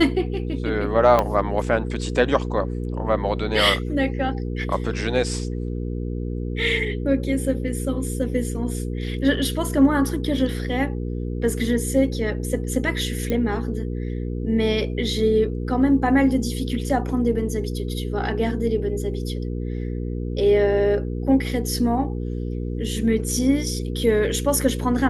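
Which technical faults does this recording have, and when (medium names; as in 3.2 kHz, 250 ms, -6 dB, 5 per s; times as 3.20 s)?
hum 60 Hz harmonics 8 -27 dBFS
1.19 s: pop -7 dBFS
13.30 s: pop -12 dBFS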